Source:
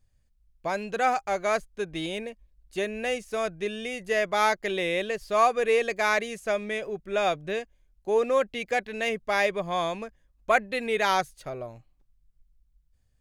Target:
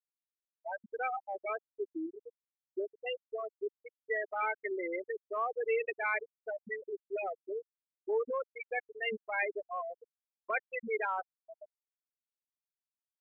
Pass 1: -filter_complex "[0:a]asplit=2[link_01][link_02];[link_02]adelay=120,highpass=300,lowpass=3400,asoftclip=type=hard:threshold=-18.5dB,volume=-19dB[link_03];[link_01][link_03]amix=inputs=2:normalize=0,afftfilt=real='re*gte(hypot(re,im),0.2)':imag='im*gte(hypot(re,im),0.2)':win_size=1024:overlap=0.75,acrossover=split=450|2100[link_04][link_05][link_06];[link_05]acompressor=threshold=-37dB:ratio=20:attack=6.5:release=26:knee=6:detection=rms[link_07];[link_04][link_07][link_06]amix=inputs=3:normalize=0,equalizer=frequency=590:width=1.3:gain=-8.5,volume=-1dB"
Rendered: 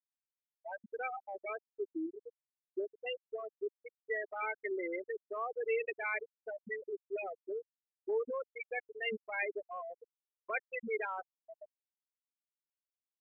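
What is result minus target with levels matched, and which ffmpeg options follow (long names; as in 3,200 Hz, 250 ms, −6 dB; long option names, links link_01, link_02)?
downward compressor: peak gain reduction +8 dB
-filter_complex "[0:a]asplit=2[link_01][link_02];[link_02]adelay=120,highpass=300,lowpass=3400,asoftclip=type=hard:threshold=-18.5dB,volume=-19dB[link_03];[link_01][link_03]amix=inputs=2:normalize=0,afftfilt=real='re*gte(hypot(re,im),0.2)':imag='im*gte(hypot(re,im),0.2)':win_size=1024:overlap=0.75,acrossover=split=450|2100[link_04][link_05][link_06];[link_05]acompressor=threshold=-28.5dB:ratio=20:attack=6.5:release=26:knee=6:detection=rms[link_07];[link_04][link_07][link_06]amix=inputs=3:normalize=0,equalizer=frequency=590:width=1.3:gain=-8.5,volume=-1dB"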